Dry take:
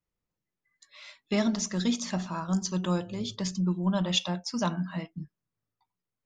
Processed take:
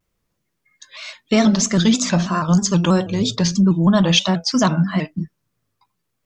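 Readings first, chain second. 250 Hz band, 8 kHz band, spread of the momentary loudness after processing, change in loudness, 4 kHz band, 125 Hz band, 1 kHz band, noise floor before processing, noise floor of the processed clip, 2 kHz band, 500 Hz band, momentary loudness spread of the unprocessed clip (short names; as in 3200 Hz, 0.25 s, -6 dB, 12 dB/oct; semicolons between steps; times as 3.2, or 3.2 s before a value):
+12.5 dB, +13.0 dB, 14 LU, +12.5 dB, +12.0 dB, +13.0 dB, +12.5 dB, under -85 dBFS, -75 dBFS, +13.0 dB, +12.0 dB, 16 LU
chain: notch 830 Hz, Q 12; in parallel at +3 dB: limiter -23 dBFS, peak gain reduction 9.5 dB; on the sum: shaped vibrato square 3.1 Hz, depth 100 cents; gain +6.5 dB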